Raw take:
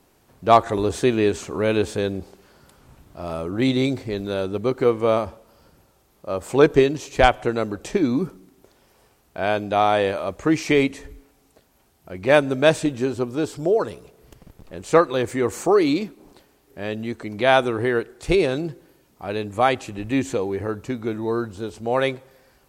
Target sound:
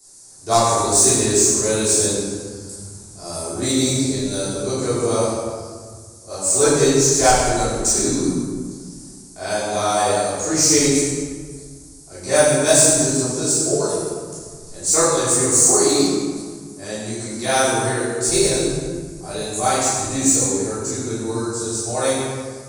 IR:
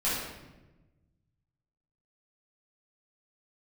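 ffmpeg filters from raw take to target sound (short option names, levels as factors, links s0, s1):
-filter_complex "[1:a]atrim=start_sample=2205,asetrate=25137,aresample=44100[s0];[0:a][s0]afir=irnorm=-1:irlink=0,aresample=22050,aresample=44100,aexciter=amount=13.4:drive=9.2:freq=4700,volume=0.2"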